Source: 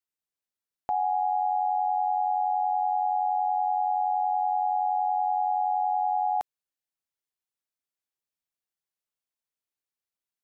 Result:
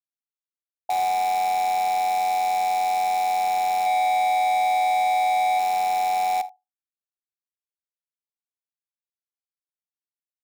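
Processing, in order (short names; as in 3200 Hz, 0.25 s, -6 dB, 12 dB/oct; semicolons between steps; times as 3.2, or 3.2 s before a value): gate with hold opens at -23 dBFS; Chebyshev band-pass 210–780 Hz, order 4; resonant low shelf 460 Hz -12 dB, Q 1.5; comb 1.1 ms, depth 55%; feedback echo 74 ms, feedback 33%, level -12 dB; in parallel at -9 dB: wrapped overs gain 21.5 dB; 3.86–5.59 on the sum: power-law curve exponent 0.5; echo 81 ms -17.5 dB; ending taper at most 300 dB/s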